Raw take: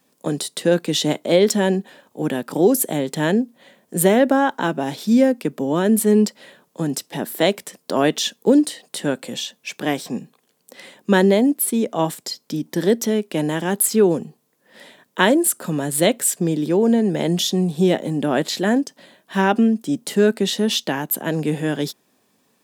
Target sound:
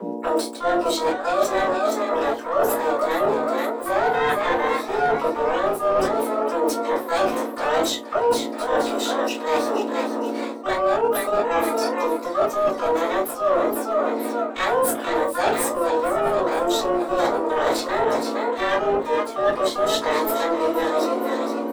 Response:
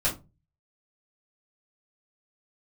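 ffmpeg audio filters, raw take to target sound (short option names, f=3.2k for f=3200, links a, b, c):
-filter_complex "[0:a]flanger=delay=4.2:depth=6.9:regen=-69:speed=1.6:shape=triangular,aeval=exprs='val(0)+0.0224*(sin(2*PI*60*n/s)+sin(2*PI*2*60*n/s)/2+sin(2*PI*3*60*n/s)/3+sin(2*PI*4*60*n/s)/4+sin(2*PI*5*60*n/s)/5)':c=same,equalizer=f=72:t=o:w=1.6:g=-6.5,asplit=6[a][b][c][d][e][f];[b]adelay=490,afreqshift=40,volume=-9.5dB[g];[c]adelay=980,afreqshift=80,volume=-16.4dB[h];[d]adelay=1470,afreqshift=120,volume=-23.4dB[i];[e]adelay=1960,afreqshift=160,volume=-30.3dB[j];[f]adelay=2450,afreqshift=200,volume=-37.2dB[k];[a][g][h][i][j][k]amix=inputs=6:normalize=0,afreqshift=160,asplit=2[l][m];[m]acrusher=bits=2:mix=0:aa=0.5,volume=-9dB[n];[l][n]amix=inputs=2:normalize=0,asetrate=45938,aresample=44100[o];[1:a]atrim=start_sample=2205,afade=t=out:st=0.37:d=0.01,atrim=end_sample=16758[p];[o][p]afir=irnorm=-1:irlink=0,asplit=2[q][r];[r]asetrate=88200,aresample=44100,atempo=0.5,volume=-5dB[s];[q][s]amix=inputs=2:normalize=0,highshelf=f=4.4k:g=-9,areverse,acompressor=threshold=-18dB:ratio=8,areverse"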